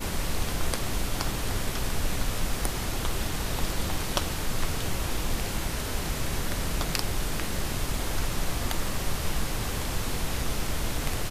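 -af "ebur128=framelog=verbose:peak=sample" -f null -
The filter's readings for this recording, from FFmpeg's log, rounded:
Integrated loudness:
  I:         -30.8 LUFS
  Threshold: -40.8 LUFS
Loudness range:
  LRA:         0.5 LU
  Threshold: -50.8 LUFS
  LRA low:   -31.1 LUFS
  LRA high:  -30.6 LUFS
Sample peak:
  Peak:       -5.3 dBFS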